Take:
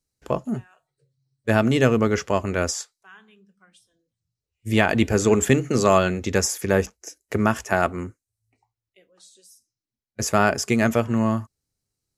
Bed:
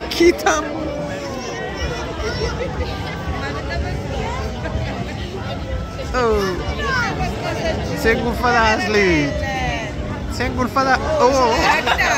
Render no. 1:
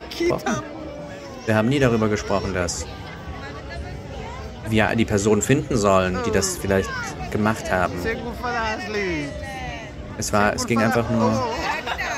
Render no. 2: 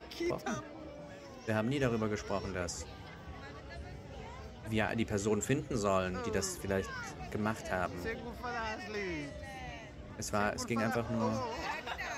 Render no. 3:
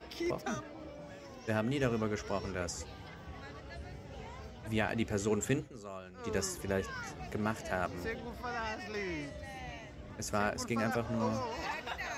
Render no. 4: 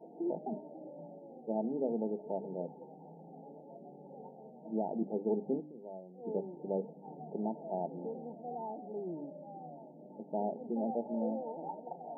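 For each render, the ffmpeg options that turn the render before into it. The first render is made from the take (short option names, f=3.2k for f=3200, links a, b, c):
-filter_complex "[1:a]volume=-9.5dB[a];[0:a][a]amix=inputs=2:normalize=0"
-af "volume=-14dB"
-filter_complex "[0:a]asplit=3[a][b][c];[a]atrim=end=5.71,asetpts=PTS-STARTPTS,afade=t=out:st=5.58:d=0.13:silence=0.188365[d];[b]atrim=start=5.71:end=6.17,asetpts=PTS-STARTPTS,volume=-14.5dB[e];[c]atrim=start=6.17,asetpts=PTS-STARTPTS,afade=t=in:d=0.13:silence=0.188365[f];[d][e][f]concat=n=3:v=0:a=1"
-af "bandreject=f=50:t=h:w=6,bandreject=f=100:t=h:w=6,bandreject=f=150:t=h:w=6,bandreject=f=200:t=h:w=6,bandreject=f=250:t=h:w=6,bandreject=f=300:t=h:w=6,afftfilt=real='re*between(b*sr/4096,140,920)':imag='im*between(b*sr/4096,140,920)':win_size=4096:overlap=0.75"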